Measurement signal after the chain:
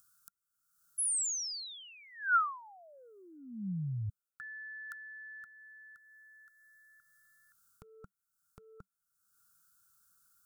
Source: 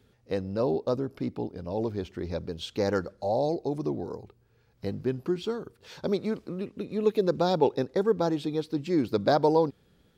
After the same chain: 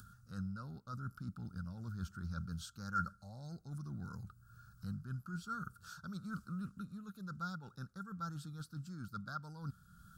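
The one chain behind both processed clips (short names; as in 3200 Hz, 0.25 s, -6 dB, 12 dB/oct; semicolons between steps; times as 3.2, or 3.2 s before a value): reverse; compressor 10:1, threshold -35 dBFS; reverse; EQ curve 190 Hz 0 dB, 300 Hz -20 dB, 420 Hz -28 dB, 950 Hz -16 dB, 1400 Hz +13 dB, 2000 Hz -26 dB, 4600 Hz -5 dB, 8300 Hz +4 dB; upward compressor, threshold -52 dBFS; gain +1.5 dB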